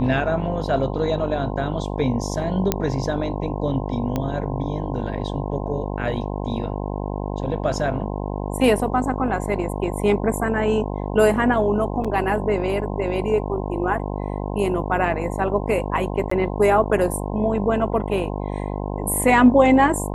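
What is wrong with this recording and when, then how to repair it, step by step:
buzz 50 Hz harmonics 21 -27 dBFS
2.72 s: pop -3 dBFS
4.16 s: pop -11 dBFS
12.04–12.05 s: dropout 5.9 ms
16.30–16.31 s: dropout 14 ms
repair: de-click; de-hum 50 Hz, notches 21; interpolate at 12.04 s, 5.9 ms; interpolate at 16.30 s, 14 ms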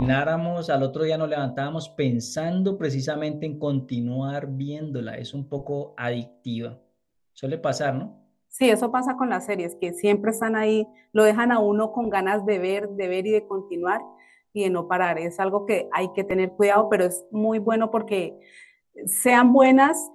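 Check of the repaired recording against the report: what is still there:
nothing left

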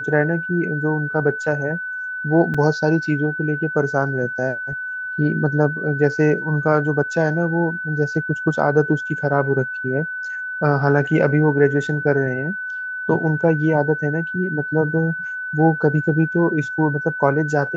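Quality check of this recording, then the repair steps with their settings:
whine 1.5 kHz -25 dBFS
2.54 s: dropout 4.6 ms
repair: band-stop 1.5 kHz, Q 30; interpolate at 2.54 s, 4.6 ms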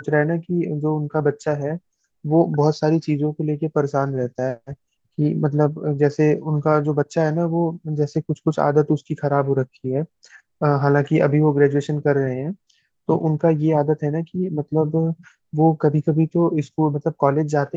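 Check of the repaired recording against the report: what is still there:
nothing left

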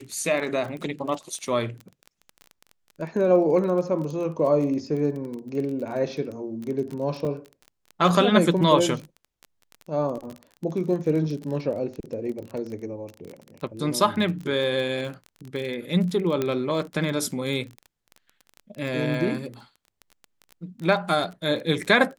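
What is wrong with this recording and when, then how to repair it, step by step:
crackle 24 per s -31 dBFS
7.25 s: dropout 2.3 ms
16.42 s: pop -12 dBFS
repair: de-click; interpolate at 7.25 s, 2.3 ms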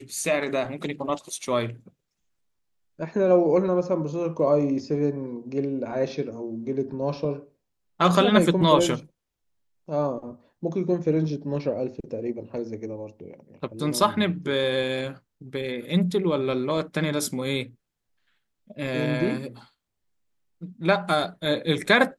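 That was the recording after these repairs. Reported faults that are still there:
16.42 s: pop

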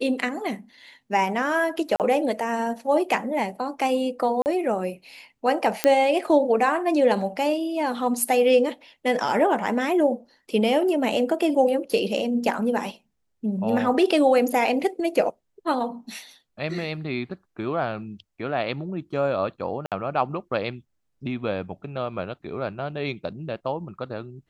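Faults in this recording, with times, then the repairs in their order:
1.96–2.00 s: dropout 38 ms
4.42–4.46 s: dropout 39 ms
5.84 s: pop -4 dBFS
19.86–19.92 s: dropout 57 ms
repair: de-click; interpolate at 1.96 s, 38 ms; interpolate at 4.42 s, 39 ms; interpolate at 19.86 s, 57 ms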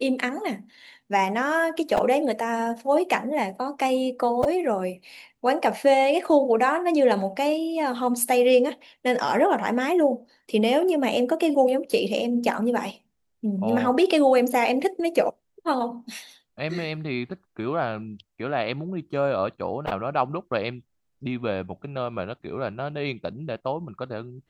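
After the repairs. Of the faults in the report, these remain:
nothing left

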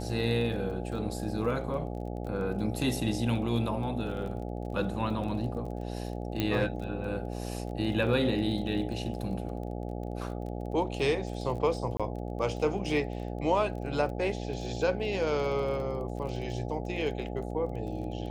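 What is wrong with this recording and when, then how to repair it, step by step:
buzz 60 Hz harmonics 14 -36 dBFS
crackle 26 per s -39 dBFS
6.40 s: pop -15 dBFS
11.97–12.00 s: dropout 26 ms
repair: de-click; de-hum 60 Hz, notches 14; interpolate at 11.97 s, 26 ms

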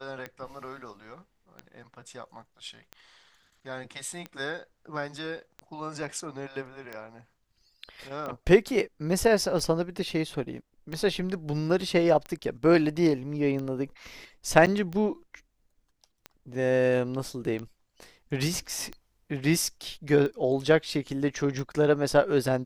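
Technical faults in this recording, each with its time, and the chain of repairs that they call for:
tick 45 rpm -23 dBFS
14.66–14.67 s: dropout 7.8 ms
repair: de-click; interpolate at 14.66 s, 7.8 ms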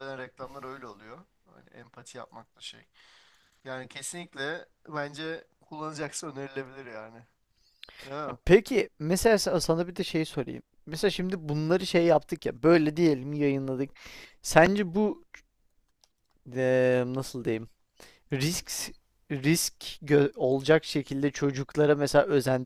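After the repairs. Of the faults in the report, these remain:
nothing left

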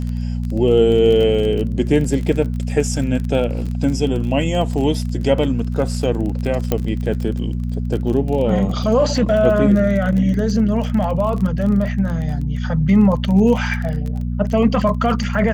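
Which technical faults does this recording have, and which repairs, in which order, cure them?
crackle 27 per s -24 dBFS
hum 60 Hz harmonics 4 -22 dBFS
6.72 s: pop -5 dBFS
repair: de-click; de-hum 60 Hz, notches 4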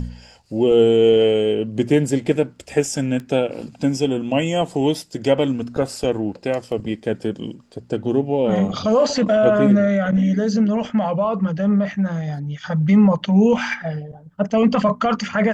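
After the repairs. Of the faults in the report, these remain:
6.72 s: pop

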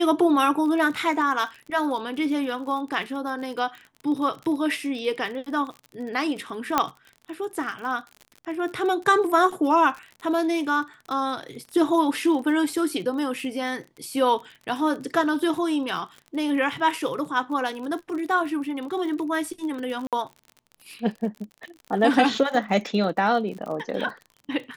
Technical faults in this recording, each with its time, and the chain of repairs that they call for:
crackle 42 per s -33 dBFS
6.78 s: pop -5 dBFS
20.07–20.13 s: dropout 57 ms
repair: de-click; interpolate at 20.07 s, 57 ms

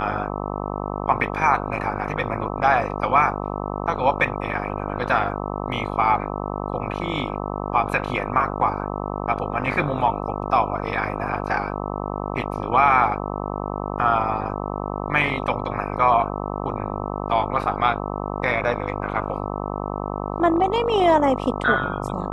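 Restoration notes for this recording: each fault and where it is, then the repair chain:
buzz 50 Hz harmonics 26 -28 dBFS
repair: de-hum 50 Hz, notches 26

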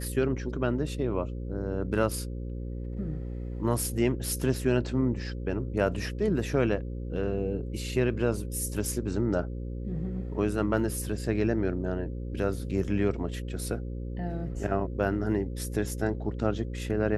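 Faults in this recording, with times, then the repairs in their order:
buzz 60 Hz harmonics 9 -35 dBFS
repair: de-hum 60 Hz, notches 9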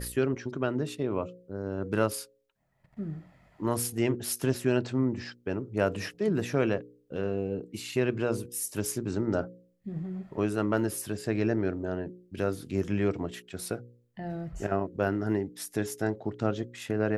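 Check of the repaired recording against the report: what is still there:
nothing left

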